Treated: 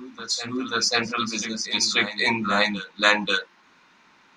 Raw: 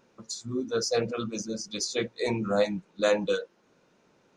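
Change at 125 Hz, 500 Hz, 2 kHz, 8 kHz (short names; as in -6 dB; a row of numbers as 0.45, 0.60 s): -0.5, -3.5, +14.5, +7.0 dB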